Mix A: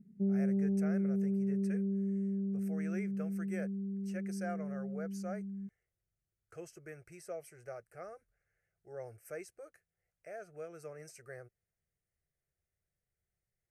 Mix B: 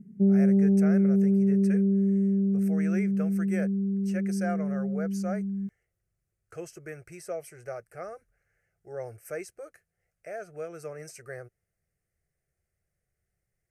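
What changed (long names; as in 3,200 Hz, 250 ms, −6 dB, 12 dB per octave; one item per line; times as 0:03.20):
speech +8.0 dB
background +10.5 dB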